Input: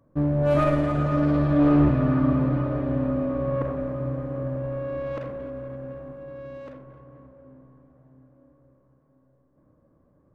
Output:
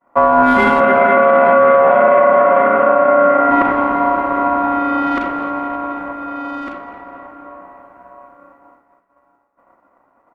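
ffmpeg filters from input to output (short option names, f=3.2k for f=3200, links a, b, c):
-filter_complex "[0:a]aeval=exprs='val(0)*sin(2*PI*840*n/s)':c=same,asettb=1/sr,asplit=3[a][b][c];[a]atrim=end=0.804[d];[b]atrim=start=0.8:end=3.51,asetpts=PTS-STARTPTS,afade=t=in:d=0.004:c=qsin,afade=t=out:st=2.706:d=0.004:c=qsin,highpass=f=140:w=0.5412,highpass=f=140:w=1.3066,equalizer=f=310:t=q:w=4:g=-4,equalizer=f=590:t=q:w=4:g=7,equalizer=f=930:t=q:w=4:g=-7,equalizer=f=1.4k:t=q:w=4:g=4,lowpass=f=2.8k:w=0.5412,lowpass=f=2.8k:w=1.3066[e];[c]atrim=start=3.506[f];[d][e]acrossfade=d=0.004:c1=hsin:c2=qsin[g];[g][f]acrossfade=d=0.004:c1=qsin:c2=hsin,aecho=1:1:208|416|624|832:0.126|0.0579|0.0266|0.0123,agate=range=-33dB:threshold=-57dB:ratio=3:detection=peak,alimiter=level_in=17.5dB:limit=-1dB:release=50:level=0:latency=1,volume=-1dB"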